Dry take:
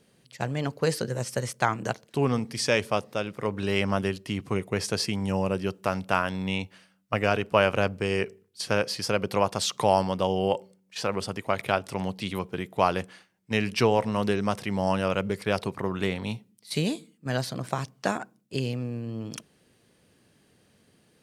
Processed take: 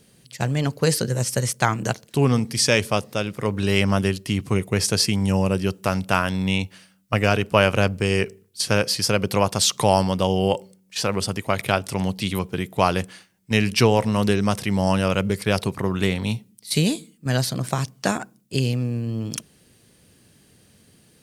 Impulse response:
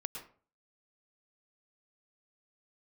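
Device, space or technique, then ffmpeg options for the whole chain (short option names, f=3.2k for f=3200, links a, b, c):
smiley-face EQ: -af "lowshelf=f=150:g=6,equalizer=f=780:t=o:w=2.6:g=-3,highshelf=f=5.4k:g=8,volume=5.5dB"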